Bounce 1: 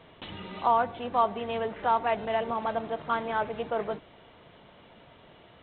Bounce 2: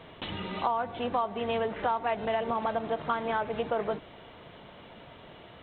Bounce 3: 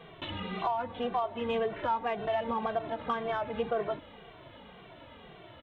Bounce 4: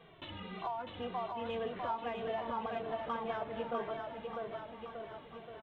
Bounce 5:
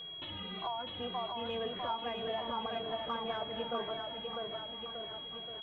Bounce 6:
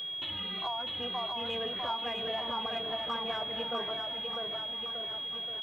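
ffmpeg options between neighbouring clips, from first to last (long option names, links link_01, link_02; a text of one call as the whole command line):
ffmpeg -i in.wav -af "acompressor=threshold=-30dB:ratio=6,volume=4.5dB" out.wav
ffmpeg -i in.wav -filter_complex "[0:a]asplit=2[link_01][link_02];[link_02]asoftclip=type=tanh:threshold=-27dB,volume=-10dB[link_03];[link_01][link_03]amix=inputs=2:normalize=0,asplit=2[link_04][link_05];[link_05]adelay=2.1,afreqshift=-1.9[link_06];[link_04][link_06]amix=inputs=2:normalize=1,volume=-1dB" out.wav
ffmpeg -i in.wav -af "aecho=1:1:650|1235|1762|2235|2662:0.631|0.398|0.251|0.158|0.1,volume=-8dB" out.wav
ffmpeg -i in.wav -af "aeval=exprs='val(0)+0.00708*sin(2*PI*3300*n/s)':channel_layout=same" out.wav
ffmpeg -i in.wav -af "crystalizer=i=4.5:c=0" out.wav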